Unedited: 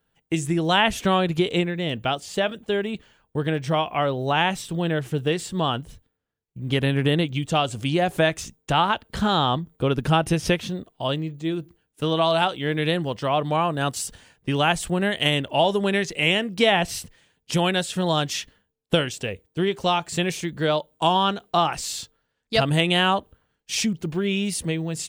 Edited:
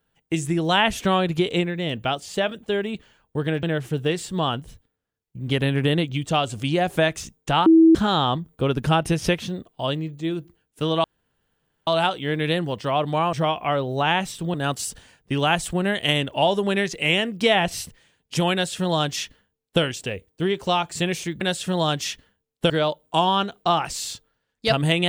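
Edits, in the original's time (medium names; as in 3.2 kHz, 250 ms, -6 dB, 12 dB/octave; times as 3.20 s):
3.63–4.84 s: move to 13.71 s
8.87–9.16 s: bleep 325 Hz -9 dBFS
12.25 s: insert room tone 0.83 s
17.70–18.99 s: copy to 20.58 s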